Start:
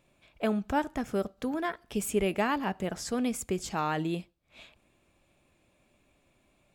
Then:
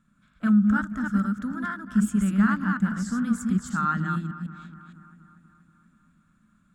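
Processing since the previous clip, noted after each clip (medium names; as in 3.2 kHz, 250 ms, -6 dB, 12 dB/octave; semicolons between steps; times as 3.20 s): chunks repeated in reverse 154 ms, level -3 dB; FFT filter 130 Hz 0 dB, 210 Hz +13 dB, 400 Hz -20 dB, 840 Hz -15 dB, 1.4 kHz +12 dB, 2.4 kHz -15 dB, 3.5 kHz -8 dB, 5.1 kHz -9 dB, 7.6 kHz -2 dB, 12 kHz -11 dB; bucket-brigade echo 239 ms, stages 4096, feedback 64%, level -15.5 dB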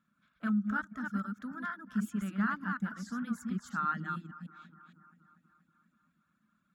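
reverb removal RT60 0.64 s; high-pass 310 Hz 6 dB/octave; peaking EQ 8.3 kHz -12.5 dB 0.44 oct; trim -5.5 dB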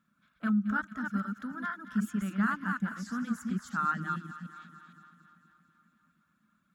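feedback echo behind a high-pass 223 ms, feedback 66%, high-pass 1.6 kHz, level -12 dB; trim +2.5 dB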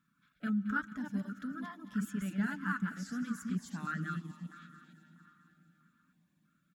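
comb 6.9 ms, depth 36%; on a send at -19.5 dB: reverberation RT60 5.1 s, pre-delay 108 ms; on the sum: step-sequenced notch 3.1 Hz 640–1500 Hz; trim -1.5 dB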